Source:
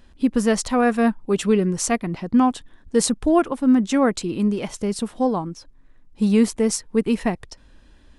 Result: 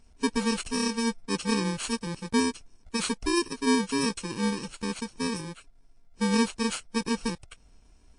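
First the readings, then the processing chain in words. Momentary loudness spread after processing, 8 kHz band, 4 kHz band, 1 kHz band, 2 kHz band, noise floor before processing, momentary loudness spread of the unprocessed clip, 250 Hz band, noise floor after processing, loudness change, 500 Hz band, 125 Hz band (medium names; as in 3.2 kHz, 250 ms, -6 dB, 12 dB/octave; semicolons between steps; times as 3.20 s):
9 LU, -5.5 dB, +1.0 dB, -7.5 dB, -2.5 dB, -52 dBFS, 8 LU, -9.0 dB, -58 dBFS, -8.0 dB, -10.5 dB, -7.5 dB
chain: bit-reversed sample order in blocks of 64 samples; trim -5.5 dB; MP3 40 kbps 22.05 kHz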